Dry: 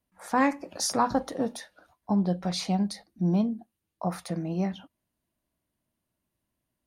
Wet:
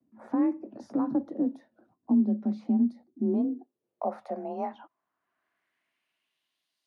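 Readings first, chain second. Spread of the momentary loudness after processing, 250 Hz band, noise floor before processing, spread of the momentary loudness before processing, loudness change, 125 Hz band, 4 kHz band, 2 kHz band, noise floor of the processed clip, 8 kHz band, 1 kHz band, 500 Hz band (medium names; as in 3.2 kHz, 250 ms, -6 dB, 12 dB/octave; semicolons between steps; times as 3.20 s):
10 LU, +1.5 dB, -84 dBFS, 9 LU, -1.0 dB, under -10 dB, under -25 dB, under -15 dB, -84 dBFS, under -30 dB, -8.0 dB, -2.5 dB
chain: band-pass sweep 220 Hz -> 4.4 kHz, 2.94–6.82 s; frequency shift +33 Hz; three bands compressed up and down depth 40%; trim +5 dB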